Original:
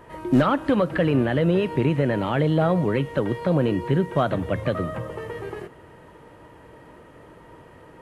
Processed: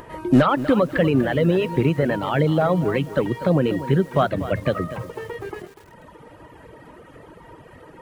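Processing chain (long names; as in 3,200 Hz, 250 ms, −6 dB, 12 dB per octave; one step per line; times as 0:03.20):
reverb reduction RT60 1.5 s
upward compression, threshold −42 dBFS
feedback echo at a low word length 243 ms, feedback 35%, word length 7 bits, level −13 dB
level +3.5 dB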